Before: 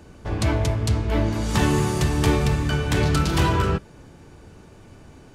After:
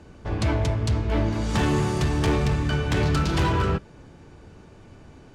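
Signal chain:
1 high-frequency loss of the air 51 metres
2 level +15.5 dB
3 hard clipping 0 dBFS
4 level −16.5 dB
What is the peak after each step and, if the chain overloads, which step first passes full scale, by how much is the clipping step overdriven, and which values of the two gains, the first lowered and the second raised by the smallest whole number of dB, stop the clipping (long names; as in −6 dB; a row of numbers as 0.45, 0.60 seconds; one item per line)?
−8.0, +7.5, 0.0, −16.5 dBFS
step 2, 7.5 dB
step 2 +7.5 dB, step 4 −8.5 dB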